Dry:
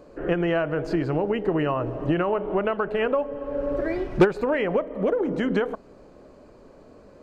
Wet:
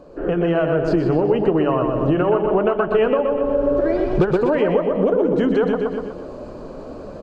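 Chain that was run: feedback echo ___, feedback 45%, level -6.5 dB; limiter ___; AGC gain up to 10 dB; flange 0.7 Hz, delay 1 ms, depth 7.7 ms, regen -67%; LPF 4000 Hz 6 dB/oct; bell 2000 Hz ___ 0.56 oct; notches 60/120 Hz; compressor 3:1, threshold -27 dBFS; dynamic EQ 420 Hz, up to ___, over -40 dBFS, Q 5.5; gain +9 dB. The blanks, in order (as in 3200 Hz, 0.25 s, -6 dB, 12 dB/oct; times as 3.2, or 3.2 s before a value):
0.123 s, -12 dBFS, -8 dB, +3 dB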